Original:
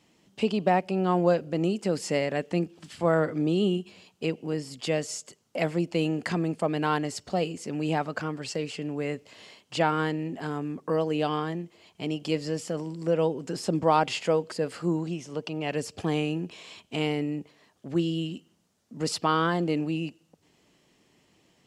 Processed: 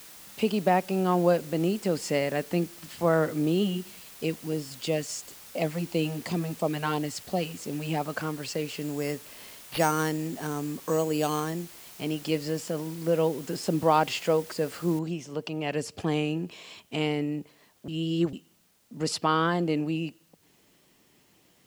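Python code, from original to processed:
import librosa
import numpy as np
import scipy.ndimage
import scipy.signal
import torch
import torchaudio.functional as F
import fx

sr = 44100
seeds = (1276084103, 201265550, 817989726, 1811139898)

y = fx.filter_lfo_notch(x, sr, shape='sine', hz=2.9, low_hz=310.0, high_hz=1700.0, q=1.1, at=(3.62, 8.03), fade=0.02)
y = fx.resample_bad(y, sr, factor=6, down='none', up='hold', at=(8.81, 11.63))
y = fx.noise_floor_step(y, sr, seeds[0], at_s=14.99, before_db=-48, after_db=-67, tilt_db=0.0)
y = fx.edit(y, sr, fx.reverse_span(start_s=17.88, length_s=0.45), tone=tone)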